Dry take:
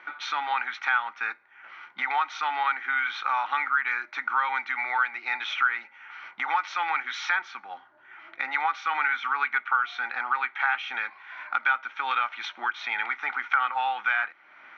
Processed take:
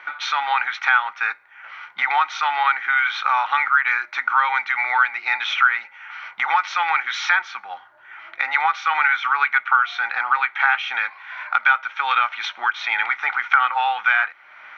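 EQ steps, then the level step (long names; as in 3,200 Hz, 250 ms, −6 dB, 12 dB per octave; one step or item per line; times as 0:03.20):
parametric band 270 Hz −14 dB 1.2 octaves
+8.0 dB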